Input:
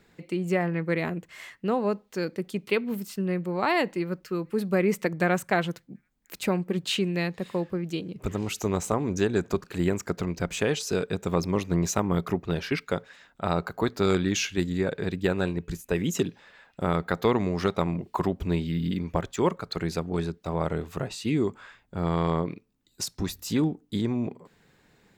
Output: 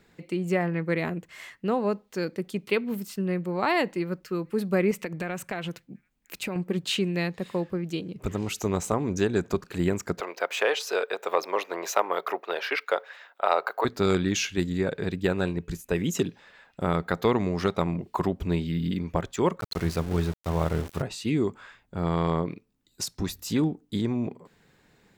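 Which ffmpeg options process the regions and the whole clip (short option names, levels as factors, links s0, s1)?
-filter_complex "[0:a]asettb=1/sr,asplit=3[s0][s1][s2];[s0]atrim=end=4.914[s3];[s1]atrim=start=4.91:end=6.56,asetpts=PTS-STARTPTS,afade=t=in:d=0.004:c=qsin,afade=t=out:st=1.646:d=0.004:c=qsin,equalizer=f=2600:w=3.2:g=6,acompressor=threshold=0.0398:ratio=5:attack=3.2:release=140:knee=1:detection=peak[s4];[s2]atrim=start=6.556[s5];[s3][s4]acrossfade=d=0.004:c1=hsin:c2=qsin[s6];[s6][s5]acrossfade=d=0.004:c1=qsin:c2=hsin,asettb=1/sr,asplit=3[s7][s8][s9];[s7]atrim=end=10.204[s10];[s8]atrim=start=10.2:end=13.85,asetpts=PTS-STARTPTS,afade=t=in:d=0.004:c=qsin,afade=t=out:st=3.646:d=0.004:c=qsin,equalizer=f=7800:t=o:w=1.5:g=-12.5,acontrast=81,highpass=f=510:w=0.5412,highpass=f=510:w=1.3066[s11];[s9]atrim=start=13.846[s12];[s10][s11]acrossfade=d=0.004:c1=hsin:c2=qsin[s13];[s13][s12]acrossfade=d=0.004:c1=qsin:c2=hsin,asettb=1/sr,asplit=3[s14][s15][s16];[s14]atrim=end=19.604[s17];[s15]atrim=start=19.6:end=21.02,asetpts=PTS-STARTPTS,afade=t=in:d=0.004:c=qsin,afade=t=out:st=1.416:d=0.004:c=qsin,equalizer=f=95:w=1.7:g=10.5,bandreject=f=50:t=h:w=6,bandreject=f=100:t=h:w=6,bandreject=f=150:t=h:w=6,aeval=exprs='val(0)*gte(abs(val(0)),0.0178)':c=same[s18];[s16]atrim=start=21.016[s19];[s17][s18]acrossfade=d=0.004:c1=hsin:c2=qsin[s20];[s20][s19]acrossfade=d=0.004:c1=qsin:c2=hsin"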